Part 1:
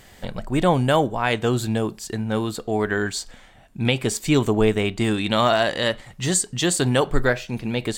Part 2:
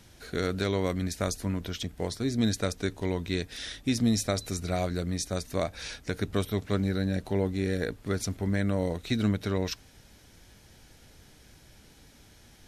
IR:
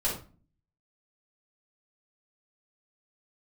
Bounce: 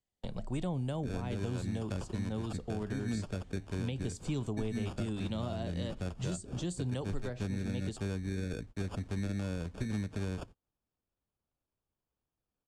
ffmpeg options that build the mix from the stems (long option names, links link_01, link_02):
-filter_complex "[0:a]equalizer=frequency=1700:width=1.1:gain=-9.5,volume=-6.5dB,asplit=2[link_01][link_02];[1:a]acrusher=samples=22:mix=1:aa=0.000001,adelay=700,volume=-1dB[link_03];[link_02]apad=whole_len=590040[link_04];[link_03][link_04]sidechaincompress=threshold=-28dB:ratio=8:attack=20:release=157[link_05];[link_01][link_05]amix=inputs=2:normalize=0,agate=range=-35dB:threshold=-42dB:ratio=16:detection=peak,acrossover=split=230|570[link_06][link_07][link_08];[link_06]acompressor=threshold=-34dB:ratio=4[link_09];[link_07]acompressor=threshold=-46dB:ratio=4[link_10];[link_08]acompressor=threshold=-47dB:ratio=4[link_11];[link_09][link_10][link_11]amix=inputs=3:normalize=0,lowpass=frequency=9600:width=0.5412,lowpass=frequency=9600:width=1.3066"